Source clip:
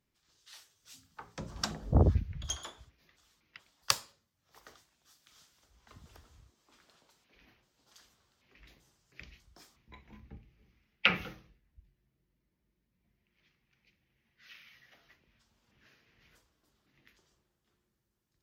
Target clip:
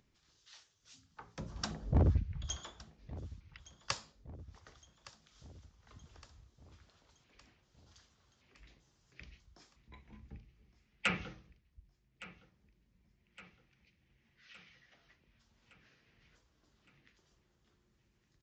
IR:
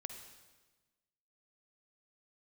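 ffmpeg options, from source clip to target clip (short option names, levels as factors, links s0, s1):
-af "lowshelf=f=200:g=5,acompressor=mode=upward:threshold=0.001:ratio=2.5,aresample=16000,volume=8.41,asoftclip=hard,volume=0.119,aresample=44100,aecho=1:1:1164|2328|3492|4656|5820:0.126|0.0705|0.0395|0.0221|0.0124,volume=0.596"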